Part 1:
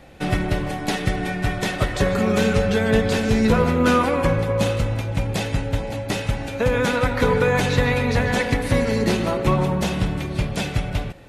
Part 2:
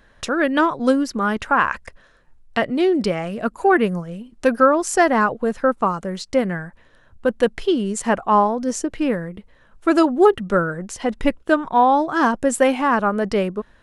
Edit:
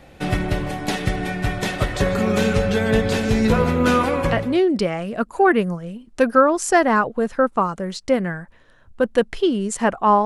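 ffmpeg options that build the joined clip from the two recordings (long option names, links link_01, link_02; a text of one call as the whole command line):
ffmpeg -i cue0.wav -i cue1.wav -filter_complex "[0:a]apad=whole_dur=10.25,atrim=end=10.25,atrim=end=4.61,asetpts=PTS-STARTPTS[link_01];[1:a]atrim=start=2.3:end=8.5,asetpts=PTS-STARTPTS[link_02];[link_01][link_02]acrossfade=duration=0.56:curve1=qsin:curve2=qsin" out.wav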